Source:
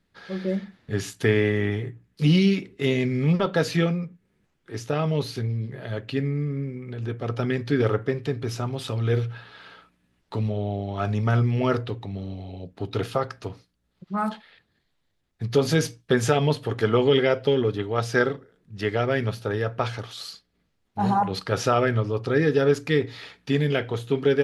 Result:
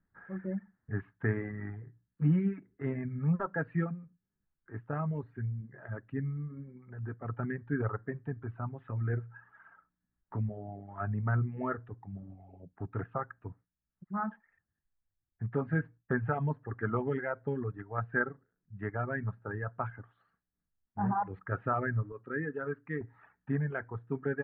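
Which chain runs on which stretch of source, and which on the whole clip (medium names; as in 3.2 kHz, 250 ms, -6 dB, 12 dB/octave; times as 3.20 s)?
22.12–23.01 s: high-pass 260 Hz 6 dB/octave + peaking EQ 800 Hz -8.5 dB 0.61 oct
whole clip: elliptic low-pass 1.7 kHz, stop band 70 dB; reverb removal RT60 1.4 s; peaking EQ 480 Hz -10 dB 1.2 oct; trim -4.5 dB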